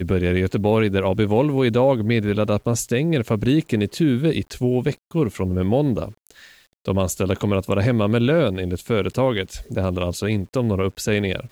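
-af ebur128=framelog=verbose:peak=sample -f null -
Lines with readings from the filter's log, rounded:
Integrated loudness:
  I:         -21.0 LUFS
  Threshold: -31.2 LUFS
Loudness range:
  LRA:         3.2 LU
  Threshold: -41.3 LUFS
  LRA low:   -23.0 LUFS
  LRA high:  -19.8 LUFS
Sample peak:
  Peak:       -7.2 dBFS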